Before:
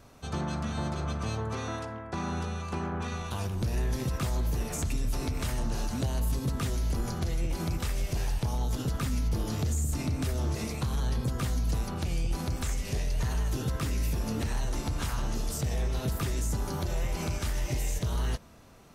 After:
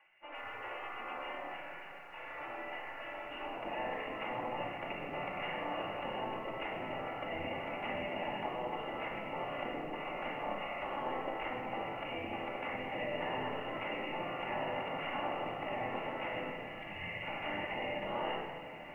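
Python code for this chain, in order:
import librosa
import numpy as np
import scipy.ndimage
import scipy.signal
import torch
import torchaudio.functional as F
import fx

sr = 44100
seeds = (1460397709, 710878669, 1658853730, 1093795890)

y = fx.spec_erase(x, sr, start_s=16.5, length_s=0.72, low_hz=200.0, high_hz=1600.0)
y = fx.notch(y, sr, hz=1600.0, q=8.8)
y = fx.spec_gate(y, sr, threshold_db=-20, keep='weak')
y = scipy.signal.sosfilt(scipy.signal.cheby1(6, 9, 2900.0, 'lowpass', fs=sr, output='sos'), y)
y = fx.echo_diffused(y, sr, ms=1425, feedback_pct=63, wet_db=-12.0)
y = fx.room_shoebox(y, sr, seeds[0], volume_m3=1800.0, walls='mixed', distance_m=2.4)
y = fx.echo_crushed(y, sr, ms=121, feedback_pct=35, bits=11, wet_db=-15)
y = y * librosa.db_to_amplitude(5.0)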